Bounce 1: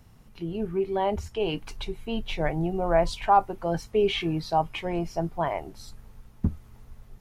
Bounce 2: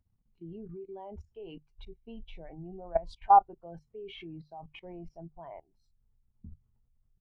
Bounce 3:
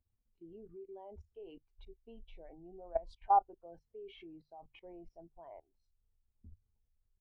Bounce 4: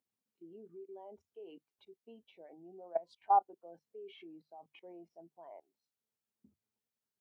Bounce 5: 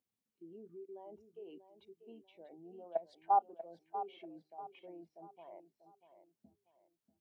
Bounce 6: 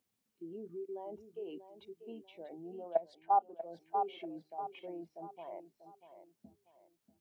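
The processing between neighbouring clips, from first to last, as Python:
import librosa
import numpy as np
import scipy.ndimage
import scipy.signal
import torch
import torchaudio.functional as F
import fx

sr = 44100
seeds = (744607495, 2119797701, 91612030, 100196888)

y1 = fx.level_steps(x, sr, step_db=18)
y1 = fx.hum_notches(y1, sr, base_hz=50, count=3)
y1 = fx.spectral_expand(y1, sr, expansion=1.5)
y2 = fx.curve_eq(y1, sr, hz=(100.0, 150.0, 260.0, 500.0, 840.0, 1200.0), db=(0, -13, -1, 3, -1, -3))
y2 = F.gain(torch.from_numpy(y2), -7.0).numpy()
y3 = scipy.signal.sosfilt(scipy.signal.butter(4, 180.0, 'highpass', fs=sr, output='sos'), y2)
y4 = fx.low_shelf(y3, sr, hz=330.0, db=5.5)
y4 = fx.echo_feedback(y4, sr, ms=640, feedback_pct=35, wet_db=-11.5)
y4 = F.gain(torch.from_numpy(y4), -2.5).numpy()
y5 = fx.rider(y4, sr, range_db=4, speed_s=0.5)
y5 = F.gain(torch.from_numpy(y5), 3.0).numpy()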